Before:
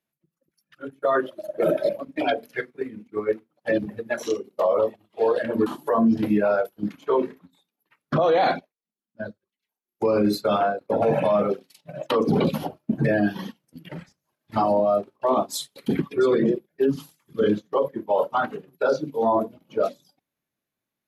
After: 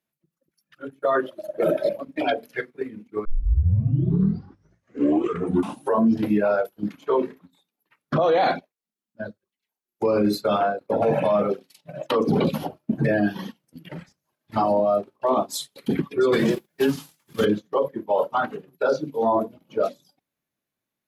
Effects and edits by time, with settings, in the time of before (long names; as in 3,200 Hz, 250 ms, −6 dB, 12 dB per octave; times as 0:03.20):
0:03.25: tape start 2.82 s
0:16.32–0:17.44: spectral envelope flattened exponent 0.6